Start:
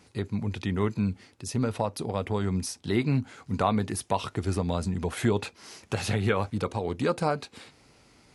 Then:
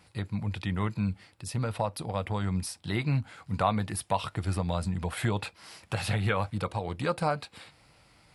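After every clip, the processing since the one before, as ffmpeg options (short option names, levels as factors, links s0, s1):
-af "equalizer=f=250:t=o:w=0.33:g=-11,equalizer=f=400:t=o:w=0.33:g=-12,equalizer=f=6300:t=o:w=0.33:g=-10"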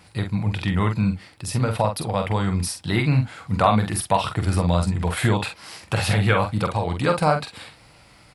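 -filter_complex "[0:a]asplit=2[s0][s1];[s1]adelay=46,volume=0.501[s2];[s0][s2]amix=inputs=2:normalize=0,volume=2.51"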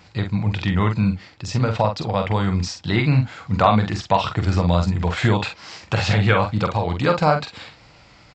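-af "aresample=16000,aresample=44100,volume=1.26"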